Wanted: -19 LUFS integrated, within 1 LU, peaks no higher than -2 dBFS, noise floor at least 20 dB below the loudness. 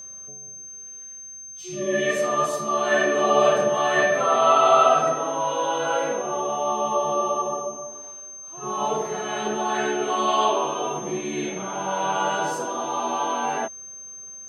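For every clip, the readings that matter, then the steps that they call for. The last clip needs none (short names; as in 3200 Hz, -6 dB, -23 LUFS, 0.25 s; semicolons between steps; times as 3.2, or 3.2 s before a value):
steady tone 6300 Hz; tone level -37 dBFS; loudness -22.5 LUFS; peak -4.5 dBFS; loudness target -19.0 LUFS
-> notch 6300 Hz, Q 30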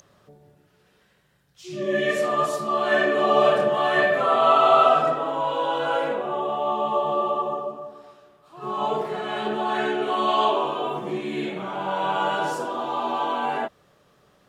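steady tone none; loudness -23.0 LUFS; peak -4.5 dBFS; loudness target -19.0 LUFS
-> gain +4 dB; limiter -2 dBFS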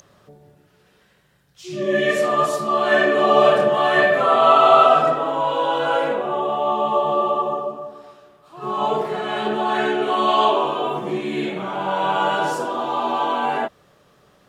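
loudness -19.0 LUFS; peak -2.0 dBFS; noise floor -58 dBFS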